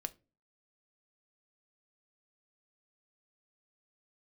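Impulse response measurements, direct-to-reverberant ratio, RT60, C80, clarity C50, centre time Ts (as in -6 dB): 10.0 dB, 0.30 s, 29.0 dB, 22.0 dB, 3 ms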